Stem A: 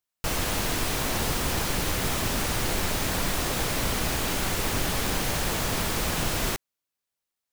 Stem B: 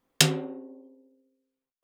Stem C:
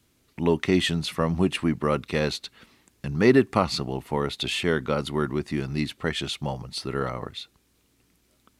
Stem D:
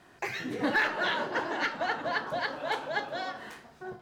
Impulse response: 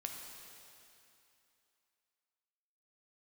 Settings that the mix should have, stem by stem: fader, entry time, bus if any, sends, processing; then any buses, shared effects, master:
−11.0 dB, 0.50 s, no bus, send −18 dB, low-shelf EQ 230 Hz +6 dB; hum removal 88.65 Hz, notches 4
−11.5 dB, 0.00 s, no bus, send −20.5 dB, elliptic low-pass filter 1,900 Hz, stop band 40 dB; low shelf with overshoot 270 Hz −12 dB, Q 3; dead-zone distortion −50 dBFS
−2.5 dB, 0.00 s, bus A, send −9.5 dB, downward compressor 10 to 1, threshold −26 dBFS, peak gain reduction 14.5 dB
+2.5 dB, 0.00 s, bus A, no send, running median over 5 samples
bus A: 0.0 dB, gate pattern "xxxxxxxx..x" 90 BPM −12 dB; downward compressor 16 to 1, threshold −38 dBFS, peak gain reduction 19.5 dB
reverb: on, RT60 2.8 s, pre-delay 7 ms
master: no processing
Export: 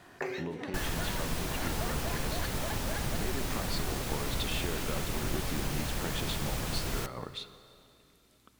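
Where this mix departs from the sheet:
stem A: send −18 dB → −12 dB
stem D: missing running median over 5 samples

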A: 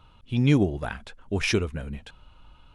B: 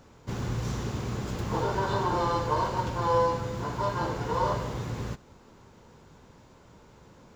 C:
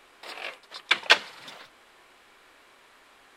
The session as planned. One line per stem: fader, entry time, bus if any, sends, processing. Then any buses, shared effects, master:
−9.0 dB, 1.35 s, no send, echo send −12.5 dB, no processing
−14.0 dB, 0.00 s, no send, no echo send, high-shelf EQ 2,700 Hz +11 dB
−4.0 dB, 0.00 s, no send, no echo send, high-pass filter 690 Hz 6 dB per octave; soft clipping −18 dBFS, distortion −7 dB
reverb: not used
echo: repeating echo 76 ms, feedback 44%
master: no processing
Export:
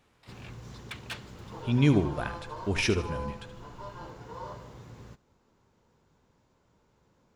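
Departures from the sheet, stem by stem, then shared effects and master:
stem A −9.0 dB → −2.5 dB
stem B: missing high-shelf EQ 2,700 Hz +11 dB
stem C −4.0 dB → −14.5 dB

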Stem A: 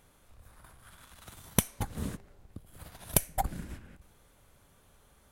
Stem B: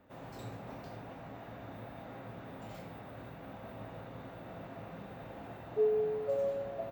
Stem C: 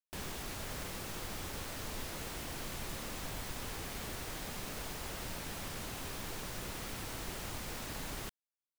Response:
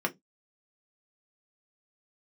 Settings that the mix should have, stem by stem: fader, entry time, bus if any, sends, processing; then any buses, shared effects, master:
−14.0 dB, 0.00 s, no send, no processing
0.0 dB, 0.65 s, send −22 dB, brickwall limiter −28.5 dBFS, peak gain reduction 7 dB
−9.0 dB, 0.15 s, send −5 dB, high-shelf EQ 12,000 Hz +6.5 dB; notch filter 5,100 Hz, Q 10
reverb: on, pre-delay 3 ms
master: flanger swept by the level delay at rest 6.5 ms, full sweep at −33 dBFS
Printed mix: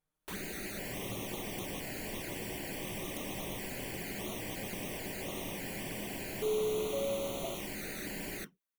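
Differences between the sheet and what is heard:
stem A −14.0 dB → −23.0 dB
stem C −9.0 dB → −1.0 dB

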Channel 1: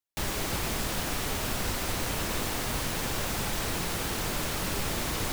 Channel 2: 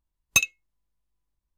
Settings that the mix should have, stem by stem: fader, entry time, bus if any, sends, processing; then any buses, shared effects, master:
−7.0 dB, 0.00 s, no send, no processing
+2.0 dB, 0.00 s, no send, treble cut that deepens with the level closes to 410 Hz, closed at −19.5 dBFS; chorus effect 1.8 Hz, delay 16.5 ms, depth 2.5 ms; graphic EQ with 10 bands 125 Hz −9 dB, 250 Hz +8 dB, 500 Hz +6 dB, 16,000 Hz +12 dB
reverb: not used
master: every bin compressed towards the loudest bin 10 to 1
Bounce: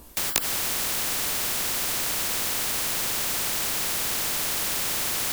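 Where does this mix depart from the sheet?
stem 1 −7.0 dB → −14.5 dB
stem 2 +2.0 dB → +9.0 dB

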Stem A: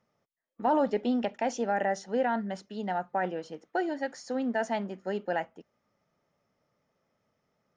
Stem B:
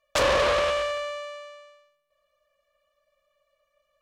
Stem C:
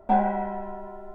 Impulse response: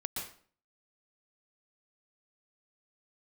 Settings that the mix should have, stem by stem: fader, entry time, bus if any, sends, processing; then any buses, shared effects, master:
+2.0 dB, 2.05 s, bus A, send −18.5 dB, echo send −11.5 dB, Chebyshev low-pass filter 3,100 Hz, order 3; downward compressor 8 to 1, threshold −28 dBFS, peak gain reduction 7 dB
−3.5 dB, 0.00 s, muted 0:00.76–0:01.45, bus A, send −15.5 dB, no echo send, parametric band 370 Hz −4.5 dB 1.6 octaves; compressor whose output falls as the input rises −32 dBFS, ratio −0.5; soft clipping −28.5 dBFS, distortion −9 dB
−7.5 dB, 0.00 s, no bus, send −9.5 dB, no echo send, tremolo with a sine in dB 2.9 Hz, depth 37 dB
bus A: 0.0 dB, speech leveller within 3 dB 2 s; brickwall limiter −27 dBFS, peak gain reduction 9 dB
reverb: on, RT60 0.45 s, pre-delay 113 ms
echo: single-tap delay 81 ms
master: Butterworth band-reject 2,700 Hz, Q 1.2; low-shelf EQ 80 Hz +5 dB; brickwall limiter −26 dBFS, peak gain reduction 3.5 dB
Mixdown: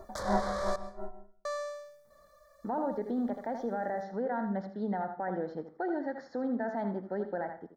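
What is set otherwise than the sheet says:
stem B −3.5 dB → +6.5 dB
stem C −7.5 dB → +1.0 dB
master: missing brickwall limiter −26 dBFS, peak gain reduction 3.5 dB

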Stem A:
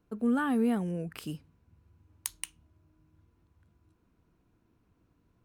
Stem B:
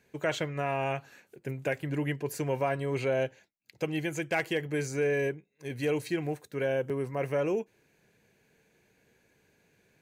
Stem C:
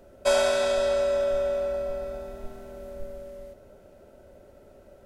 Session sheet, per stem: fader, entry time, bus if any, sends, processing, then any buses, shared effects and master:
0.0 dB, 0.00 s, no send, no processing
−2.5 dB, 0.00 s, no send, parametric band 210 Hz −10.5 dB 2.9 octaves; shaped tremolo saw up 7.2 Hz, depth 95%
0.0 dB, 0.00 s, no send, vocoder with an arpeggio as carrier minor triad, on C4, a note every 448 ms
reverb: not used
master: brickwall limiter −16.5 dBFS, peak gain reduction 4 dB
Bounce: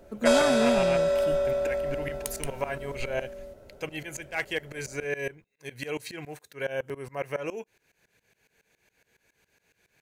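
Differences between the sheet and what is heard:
stem B −2.5 dB → +6.5 dB
stem C: missing vocoder with an arpeggio as carrier minor triad, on C4, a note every 448 ms
master: missing brickwall limiter −16.5 dBFS, peak gain reduction 4 dB

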